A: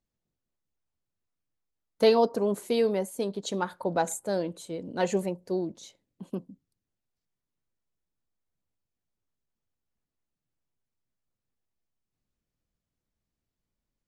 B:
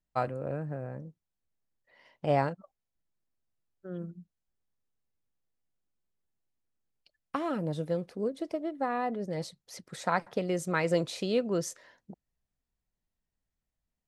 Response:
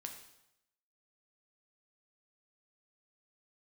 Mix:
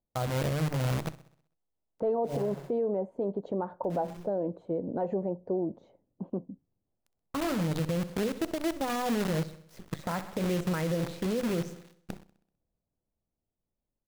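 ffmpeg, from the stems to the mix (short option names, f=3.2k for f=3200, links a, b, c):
-filter_complex "[0:a]dynaudnorm=f=280:g=13:m=6dB,asoftclip=type=hard:threshold=-10dB,lowpass=f=730:t=q:w=1.5,volume=-2dB,asplit=2[a][b];[1:a]aemphasis=mode=reproduction:type=riaa,bandreject=f=50:t=h:w=6,bandreject=f=100:t=h:w=6,bandreject=f=150:t=h:w=6,bandreject=f=200:t=h:w=6,bandreject=f=250:t=h:w=6,bandreject=f=300:t=h:w=6,bandreject=f=350:t=h:w=6,bandreject=f=400:t=h:w=6,acrusher=bits=6:dc=4:mix=0:aa=0.000001,volume=1dB,asplit=2[c][d];[d]volume=-17dB[e];[b]apad=whole_len=620895[f];[c][f]sidechaincompress=threshold=-33dB:ratio=4:attack=16:release=255[g];[e]aecho=0:1:64|128|192|256|320|384|448:1|0.51|0.26|0.133|0.0677|0.0345|0.0176[h];[a][g][h]amix=inputs=3:normalize=0,alimiter=limit=-22dB:level=0:latency=1:release=130"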